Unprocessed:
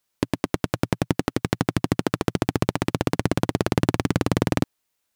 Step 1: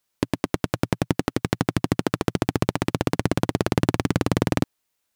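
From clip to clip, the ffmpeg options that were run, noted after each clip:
ffmpeg -i in.wav -af anull out.wav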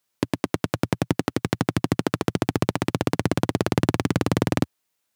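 ffmpeg -i in.wav -af "highpass=frequency=80:width=0.5412,highpass=frequency=80:width=1.3066" out.wav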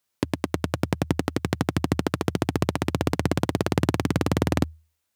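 ffmpeg -i in.wav -af "equalizer=frequency=79:width=6.7:gain=12.5,volume=-1.5dB" out.wav

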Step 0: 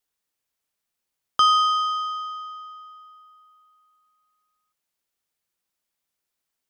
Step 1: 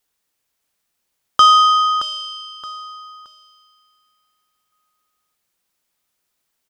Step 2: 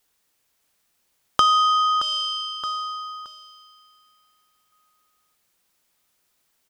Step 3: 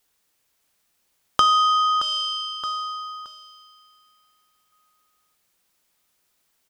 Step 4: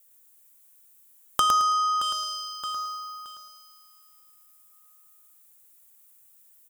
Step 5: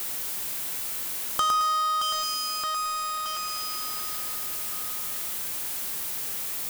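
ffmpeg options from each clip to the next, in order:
ffmpeg -i in.wav -af "acontrast=38,aecho=1:1:622|1244|1866:0.316|0.0917|0.0266,volume=2.5dB" out.wav
ffmpeg -i in.wav -af "acompressor=threshold=-25dB:ratio=2.5,volume=4dB" out.wav
ffmpeg -i in.wav -af "bandreject=frequency=116.9:width_type=h:width=4,bandreject=frequency=233.8:width_type=h:width=4,bandreject=frequency=350.7:width_type=h:width=4,bandreject=frequency=467.6:width_type=h:width=4,bandreject=frequency=584.5:width_type=h:width=4,bandreject=frequency=701.4:width_type=h:width=4,bandreject=frequency=818.3:width_type=h:width=4,bandreject=frequency=935.2:width_type=h:width=4,bandreject=frequency=1052.1:width_type=h:width=4,bandreject=frequency=1169:width_type=h:width=4,bandreject=frequency=1285.9:width_type=h:width=4,bandreject=frequency=1402.8:width_type=h:width=4,bandreject=frequency=1519.7:width_type=h:width=4,bandreject=frequency=1636.6:width_type=h:width=4,bandreject=frequency=1753.5:width_type=h:width=4,bandreject=frequency=1870.4:width_type=h:width=4,bandreject=frequency=1987.3:width_type=h:width=4" out.wav
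ffmpeg -i in.wav -filter_complex "[0:a]aexciter=amount=6.4:drive=3.9:freq=7100,asplit=2[link_01][link_02];[link_02]aecho=0:1:109|218|327|436:0.596|0.167|0.0467|0.0131[link_03];[link_01][link_03]amix=inputs=2:normalize=0,volume=-5dB" out.wav
ffmpeg -i in.wav -af "aeval=exprs='val(0)+0.5*0.0944*sgn(val(0))':channel_layout=same,volume=-5.5dB" out.wav

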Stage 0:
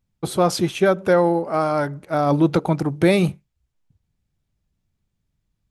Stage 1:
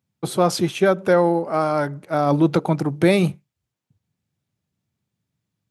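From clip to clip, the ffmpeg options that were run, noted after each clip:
ffmpeg -i in.wav -af "highpass=frequency=100:width=0.5412,highpass=frequency=100:width=1.3066" out.wav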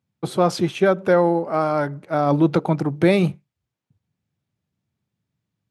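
ffmpeg -i in.wav -af "highshelf=frequency=6700:gain=-10.5" out.wav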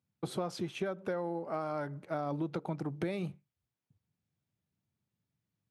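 ffmpeg -i in.wav -af "acompressor=threshold=-25dB:ratio=6,volume=-7.5dB" out.wav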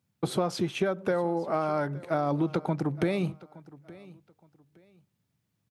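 ffmpeg -i in.wav -af "aecho=1:1:868|1736:0.0944|0.0245,volume=8dB" out.wav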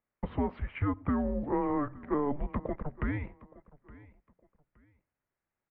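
ffmpeg -i in.wav -af "highpass=frequency=350:width_type=q:width=0.5412,highpass=frequency=350:width_type=q:width=1.307,lowpass=frequency=2500:width_type=q:width=0.5176,lowpass=frequency=2500:width_type=q:width=0.7071,lowpass=frequency=2500:width_type=q:width=1.932,afreqshift=-290,volume=-1dB" out.wav

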